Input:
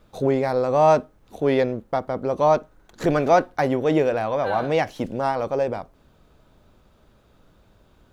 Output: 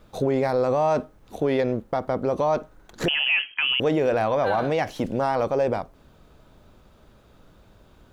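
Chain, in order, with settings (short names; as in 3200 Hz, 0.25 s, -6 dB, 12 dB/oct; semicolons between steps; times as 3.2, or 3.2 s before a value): 3.08–3.8 inverted band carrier 3200 Hz; limiter -17 dBFS, peak gain reduction 10.5 dB; gain +3 dB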